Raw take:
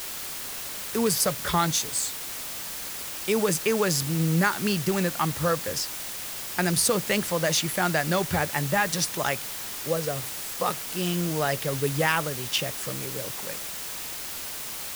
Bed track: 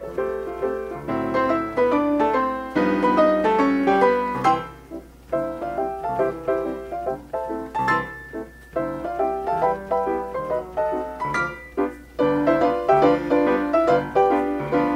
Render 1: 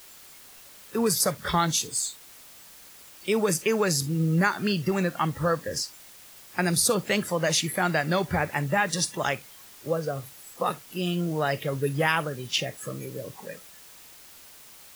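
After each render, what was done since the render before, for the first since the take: noise print and reduce 14 dB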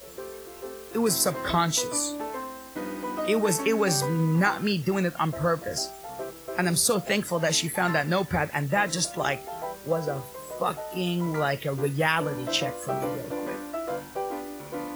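add bed track -14 dB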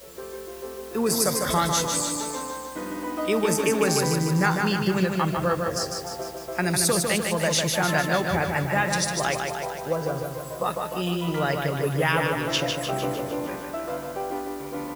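feedback echo 0.151 s, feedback 59%, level -4.5 dB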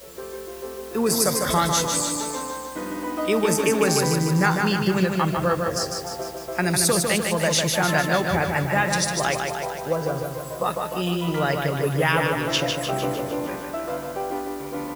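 gain +2 dB

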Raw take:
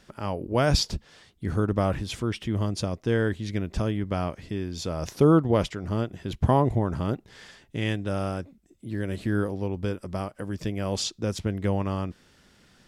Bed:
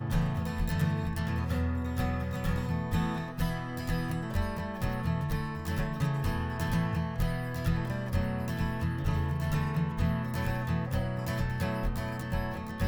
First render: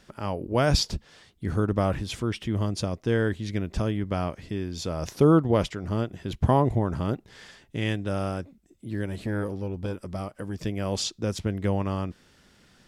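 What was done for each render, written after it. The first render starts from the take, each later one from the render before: 9.06–10.63 core saturation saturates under 360 Hz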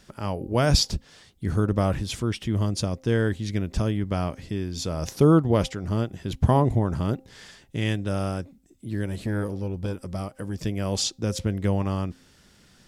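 tone controls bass +3 dB, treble +5 dB; de-hum 262.6 Hz, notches 3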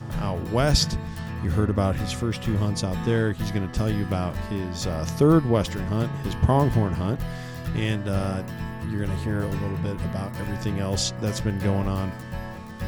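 add bed -1 dB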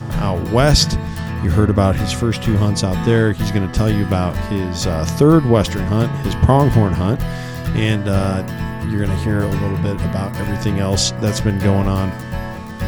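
gain +8.5 dB; limiter -1 dBFS, peak gain reduction 3 dB

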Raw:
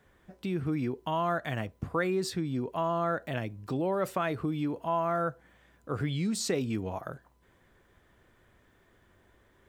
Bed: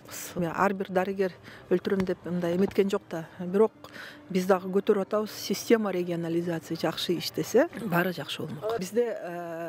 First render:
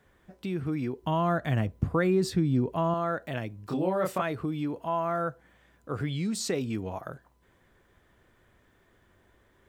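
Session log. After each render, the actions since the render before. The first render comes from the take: 1.03–2.94 low shelf 320 Hz +10.5 dB; 3.68–4.22 doubler 27 ms -2 dB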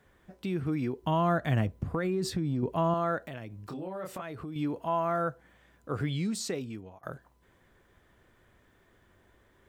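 1.69–2.63 compressor, threshold -26 dBFS; 3.18–4.56 compressor 3:1, threshold -38 dBFS; 6.16–7.03 fade out, to -23 dB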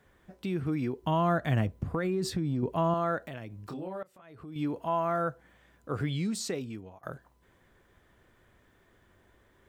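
4.03–4.63 fade in quadratic, from -22.5 dB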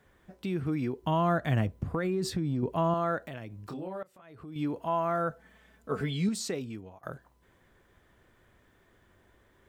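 5.3–6.29 comb 4.6 ms, depth 76%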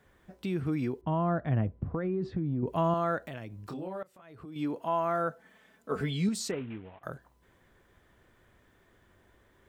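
1.01–2.67 tape spacing loss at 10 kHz 43 dB; 4.45–5.96 HPF 170 Hz; 6.51–7.03 CVSD 16 kbps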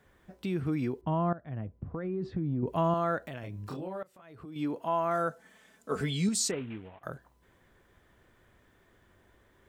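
1.33–2.47 fade in, from -16.5 dB; 3.4–3.81 doubler 29 ms -2.5 dB; 5.11–6.88 bell 7600 Hz +9 dB 1.5 oct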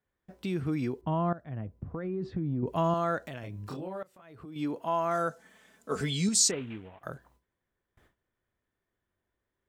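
gate with hold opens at -51 dBFS; dynamic EQ 6100 Hz, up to +8 dB, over -57 dBFS, Q 0.95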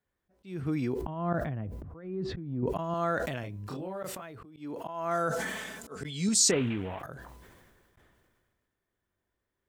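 auto swell 0.258 s; sustainer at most 31 dB/s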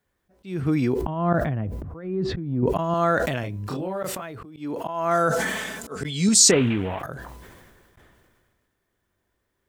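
gain +8.5 dB

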